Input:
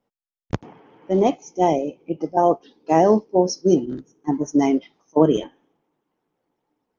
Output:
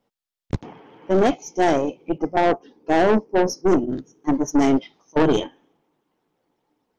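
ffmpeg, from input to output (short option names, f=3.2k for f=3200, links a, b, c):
-af "asetnsamples=n=441:p=0,asendcmd='2.18 equalizer g -12;3.93 equalizer g 3.5',equalizer=f=3.9k:t=o:w=1.1:g=4,aeval=exprs='(tanh(7.94*val(0)+0.5)-tanh(0.5))/7.94':c=same,volume=5.5dB"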